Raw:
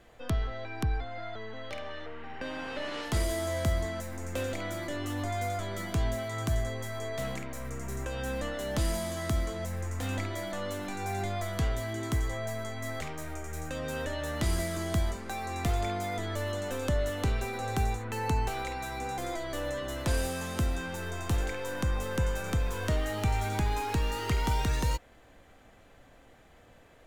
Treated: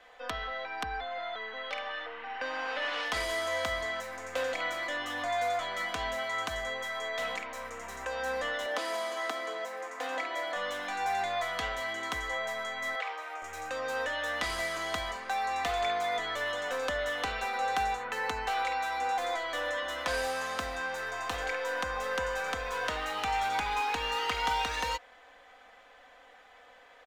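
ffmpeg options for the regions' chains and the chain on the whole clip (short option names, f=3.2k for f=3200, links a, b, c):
-filter_complex "[0:a]asettb=1/sr,asplit=3[a][b][c];[a]atrim=end=8.664[d];[b]atrim=start=8.66:end=10.56,asetpts=PTS-STARTPTS,afade=t=in:d=0.004:c=qsin,afade=t=out:st=1.896:d=0.004:c=qsin,highpass=f=280:w=0.5412,highpass=f=280:w=1.3066,tiltshelf=f=1.1k:g=3.5[e];[c]atrim=start=10.556[f];[d][e]acrossfade=d=0.004:c1=hsin:c2=qsin[g];[g][f]acrossfade=d=0.004:c1=qsin:c2=hsin,asettb=1/sr,asplit=3[h][i][j];[h]atrim=end=12.954[k];[i]atrim=start=12.95:end=13.42,asetpts=PTS-STARTPTS,afade=t=in:d=0.004:c=qsin,afade=t=out:st=0.466:d=0.004:c=qsin,highpass=f=400:w=0.5412,highpass=f=400:w=1.3066,acrossover=split=3900[l][m];[m]acompressor=threshold=-59dB:ratio=4:attack=1:release=60[n];[l][n]amix=inputs=2:normalize=0[o];[j]atrim=start=13.416[p];[k][o]acrossfade=d=0.004:c1=hsin:c2=qsin[q];[q][p]acrossfade=d=0.004:c1=qsin:c2=hsin,acrossover=split=550 5100:gain=0.0708 1 0.2[r][s][t];[r][s][t]amix=inputs=3:normalize=0,aecho=1:1:4:0.57,volume=5dB"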